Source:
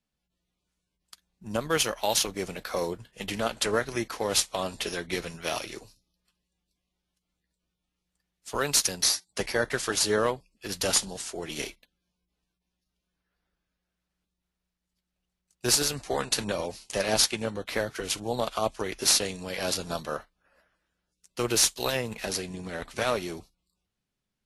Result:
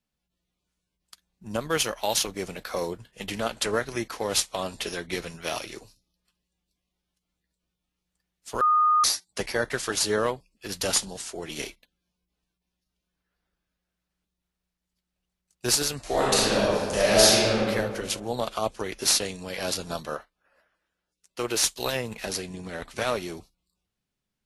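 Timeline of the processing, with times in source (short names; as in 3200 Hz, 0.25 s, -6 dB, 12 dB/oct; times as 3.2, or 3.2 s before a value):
8.61–9.04 bleep 1230 Hz -17 dBFS
15.99–17.61 reverb throw, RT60 1.8 s, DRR -7 dB
20.15–21.64 tone controls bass -7 dB, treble -3 dB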